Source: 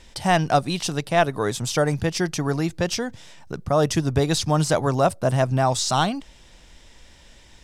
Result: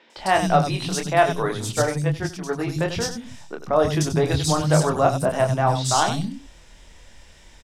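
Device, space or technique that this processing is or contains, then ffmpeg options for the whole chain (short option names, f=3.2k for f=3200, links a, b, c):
slapback doubling: -filter_complex "[0:a]asplit=3[a][b][c];[b]adelay=26,volume=-4.5dB[d];[c]adelay=93,volume=-10dB[e];[a][d][e]amix=inputs=3:normalize=0,asettb=1/sr,asplit=3[f][g][h];[f]atrim=end=1.724[i];[g]atrim=start=1.72:end=2.59,asetpts=PTS-STARTPTS,afade=t=in:d=0.004:c=qsin,afade=t=out:st=0.866:d=0.004:c=qsin,agate=range=-9dB:threshold=-20dB:ratio=16:detection=peak[j];[h]atrim=start=2.586[k];[i][j]acrossfade=d=0.004:c1=hsin:c2=qsin[l];[l][k]acrossfade=d=0.004:c1=qsin:c2=hsin,acrossover=split=250|3800[m][n][o];[o]adelay=100[p];[m]adelay=170[q];[q][n][p]amix=inputs=3:normalize=0"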